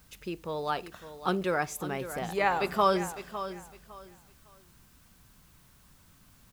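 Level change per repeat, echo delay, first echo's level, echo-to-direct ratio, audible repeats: −12.5 dB, 556 ms, −12.0 dB, −11.5 dB, 2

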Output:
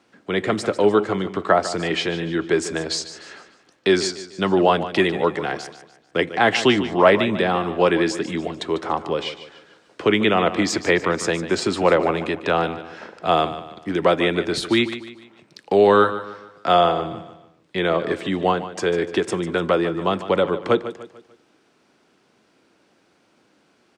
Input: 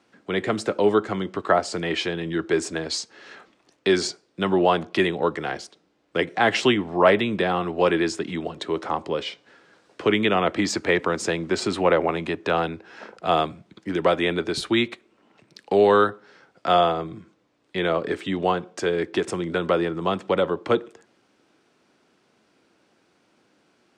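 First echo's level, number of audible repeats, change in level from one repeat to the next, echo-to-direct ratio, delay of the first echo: −13.0 dB, 3, −8.0 dB, −12.0 dB, 148 ms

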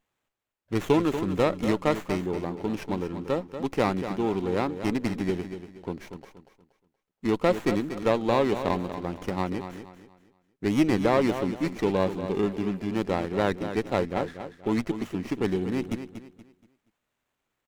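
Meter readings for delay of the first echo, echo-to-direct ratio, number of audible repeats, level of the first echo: 237 ms, −9.5 dB, 3, −10.0 dB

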